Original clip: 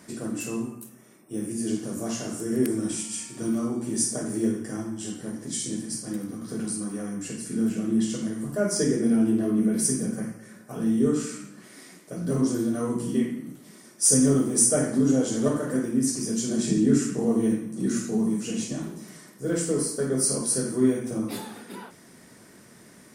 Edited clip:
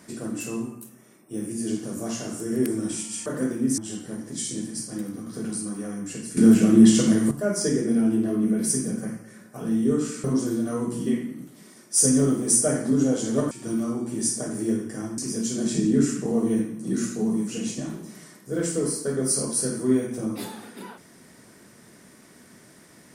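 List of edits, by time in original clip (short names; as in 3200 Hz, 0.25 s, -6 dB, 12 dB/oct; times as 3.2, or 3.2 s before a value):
3.26–4.93 swap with 15.59–16.11
7.52–8.46 gain +10.5 dB
11.39–12.32 cut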